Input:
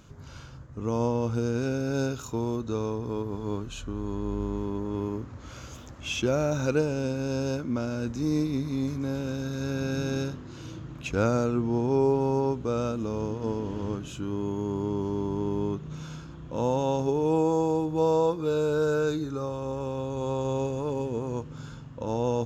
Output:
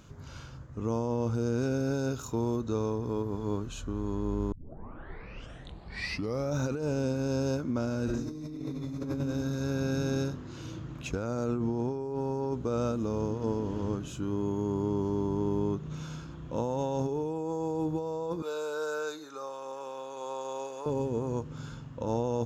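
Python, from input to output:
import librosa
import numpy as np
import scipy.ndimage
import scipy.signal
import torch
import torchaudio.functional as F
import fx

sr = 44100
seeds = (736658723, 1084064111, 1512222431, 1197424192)

y = fx.reverb_throw(x, sr, start_s=8.04, length_s=0.98, rt60_s=1.2, drr_db=-9.5)
y = fx.highpass(y, sr, hz=700.0, slope=12, at=(18.42, 20.86))
y = fx.edit(y, sr, fx.tape_start(start_s=4.52, length_s=2.07), tone=tone)
y = fx.dynamic_eq(y, sr, hz=2600.0, q=1.1, threshold_db=-50.0, ratio=4.0, max_db=-5)
y = fx.over_compress(y, sr, threshold_db=-28.0, ratio=-1.0)
y = y * librosa.db_to_amplitude(-2.5)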